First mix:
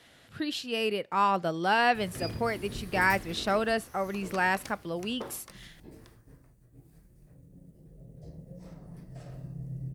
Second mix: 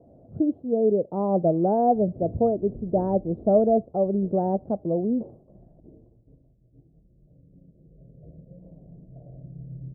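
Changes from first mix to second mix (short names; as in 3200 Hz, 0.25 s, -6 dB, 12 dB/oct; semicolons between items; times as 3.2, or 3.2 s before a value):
speech +10.5 dB; master: add elliptic low-pass 660 Hz, stop band 70 dB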